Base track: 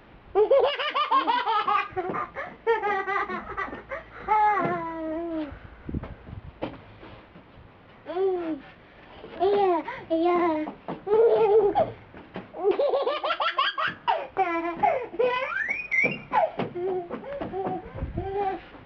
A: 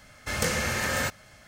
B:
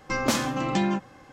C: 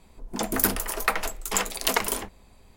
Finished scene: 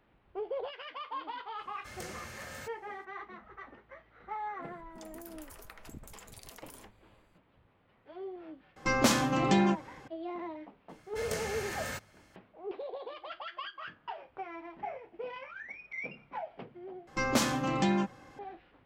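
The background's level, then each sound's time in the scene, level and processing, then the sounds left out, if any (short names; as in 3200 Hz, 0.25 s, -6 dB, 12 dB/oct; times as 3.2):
base track -17 dB
1.58 add A -17.5 dB
4.62 add C -16 dB + compressor 10:1, threshold -30 dBFS
8.76 add B -1 dB
10.89 add A -11 dB
17.07 replace with B -3.5 dB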